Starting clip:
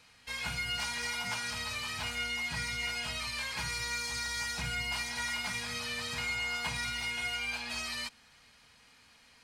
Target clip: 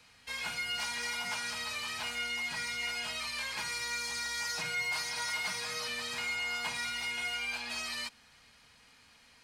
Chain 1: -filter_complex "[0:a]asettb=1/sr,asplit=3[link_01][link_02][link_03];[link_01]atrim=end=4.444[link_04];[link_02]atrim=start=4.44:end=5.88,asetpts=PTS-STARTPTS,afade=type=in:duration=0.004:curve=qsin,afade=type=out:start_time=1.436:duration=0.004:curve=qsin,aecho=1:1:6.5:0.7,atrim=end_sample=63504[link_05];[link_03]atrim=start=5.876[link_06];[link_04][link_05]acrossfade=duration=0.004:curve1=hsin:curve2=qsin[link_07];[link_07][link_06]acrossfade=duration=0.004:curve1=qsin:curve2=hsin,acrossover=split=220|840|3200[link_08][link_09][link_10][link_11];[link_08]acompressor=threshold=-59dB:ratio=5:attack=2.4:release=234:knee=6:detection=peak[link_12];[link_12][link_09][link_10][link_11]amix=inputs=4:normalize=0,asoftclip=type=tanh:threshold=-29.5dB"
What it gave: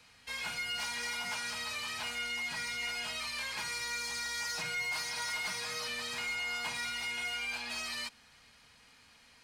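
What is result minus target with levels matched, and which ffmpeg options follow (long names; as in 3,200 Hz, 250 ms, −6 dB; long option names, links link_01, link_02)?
soft clipping: distortion +10 dB
-filter_complex "[0:a]asettb=1/sr,asplit=3[link_01][link_02][link_03];[link_01]atrim=end=4.444[link_04];[link_02]atrim=start=4.44:end=5.88,asetpts=PTS-STARTPTS,afade=type=in:duration=0.004:curve=qsin,afade=type=out:start_time=1.436:duration=0.004:curve=qsin,aecho=1:1:6.5:0.7,atrim=end_sample=63504[link_05];[link_03]atrim=start=5.876[link_06];[link_04][link_05]acrossfade=duration=0.004:curve1=hsin:curve2=qsin[link_07];[link_07][link_06]acrossfade=duration=0.004:curve1=qsin:curve2=hsin,acrossover=split=220|840|3200[link_08][link_09][link_10][link_11];[link_08]acompressor=threshold=-59dB:ratio=5:attack=2.4:release=234:knee=6:detection=peak[link_12];[link_12][link_09][link_10][link_11]amix=inputs=4:normalize=0,asoftclip=type=tanh:threshold=-23dB"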